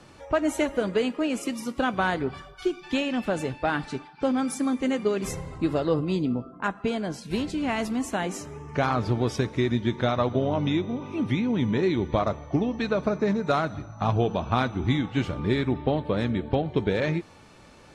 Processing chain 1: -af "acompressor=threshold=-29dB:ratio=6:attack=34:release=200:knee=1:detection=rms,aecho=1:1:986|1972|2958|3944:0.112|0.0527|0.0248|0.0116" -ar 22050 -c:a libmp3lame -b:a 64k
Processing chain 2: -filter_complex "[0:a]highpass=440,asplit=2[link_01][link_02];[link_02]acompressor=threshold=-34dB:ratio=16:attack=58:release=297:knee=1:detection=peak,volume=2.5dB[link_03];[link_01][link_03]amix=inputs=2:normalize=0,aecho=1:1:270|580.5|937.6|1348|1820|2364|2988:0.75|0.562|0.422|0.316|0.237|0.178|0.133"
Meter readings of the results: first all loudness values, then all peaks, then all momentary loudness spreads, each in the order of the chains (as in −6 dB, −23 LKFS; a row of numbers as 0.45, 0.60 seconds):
−33.5, −23.0 LKFS; −16.0, −4.5 dBFS; 4, 3 LU